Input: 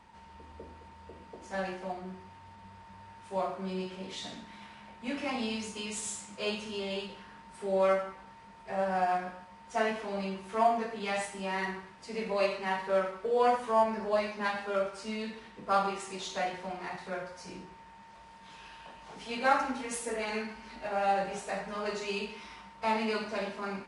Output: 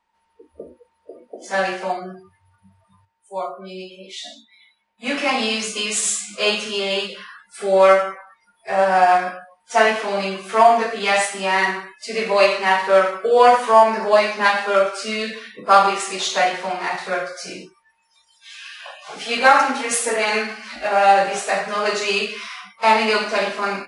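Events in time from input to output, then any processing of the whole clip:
3.05–4.98 gain -8.5 dB
17.67–18.77 bell 270 Hz -4 dB -> -11.5 dB 2.7 oct
whole clip: spectral noise reduction 29 dB; bell 110 Hz -14 dB 2.9 oct; maximiser +18 dB; gain -1 dB

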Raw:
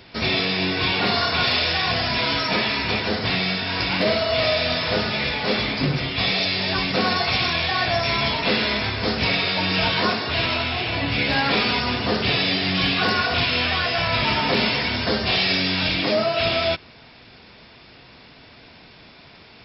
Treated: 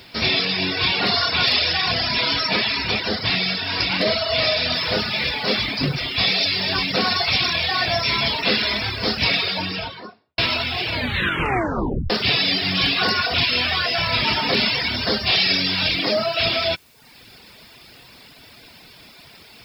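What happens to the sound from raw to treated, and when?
4.75 noise floor step -69 dB -62 dB
9.36–10.38 studio fade out
10.91 tape stop 1.19 s
whole clip: reverb removal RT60 0.76 s; high shelf 3200 Hz +8.5 dB

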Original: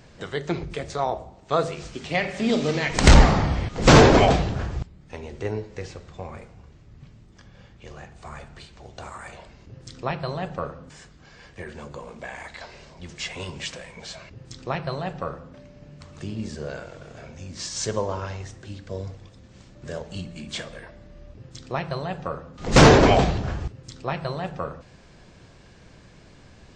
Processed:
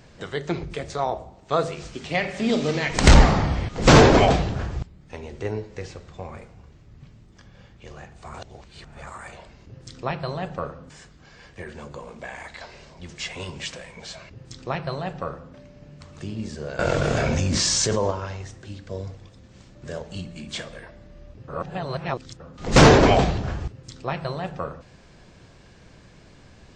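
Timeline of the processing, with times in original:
8.34–9.07 reverse
16.79–18.11 fast leveller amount 100%
21.48–22.4 reverse

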